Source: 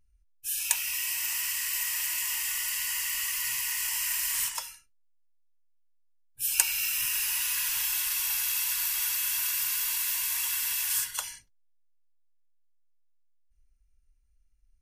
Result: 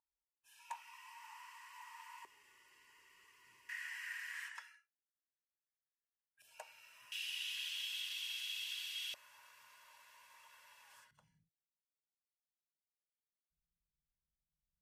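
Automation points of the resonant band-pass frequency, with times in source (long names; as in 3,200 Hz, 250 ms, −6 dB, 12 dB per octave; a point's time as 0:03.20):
resonant band-pass, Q 5.8
910 Hz
from 0:02.25 390 Hz
from 0:03.69 1,700 Hz
from 0:06.42 630 Hz
from 0:07.12 3,200 Hz
from 0:09.14 600 Hz
from 0:11.11 160 Hz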